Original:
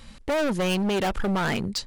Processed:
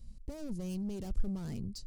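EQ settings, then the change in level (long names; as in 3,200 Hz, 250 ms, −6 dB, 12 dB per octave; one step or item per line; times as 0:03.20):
guitar amp tone stack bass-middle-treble 10-0-1
flat-topped bell 2,300 Hz −10 dB
+5.0 dB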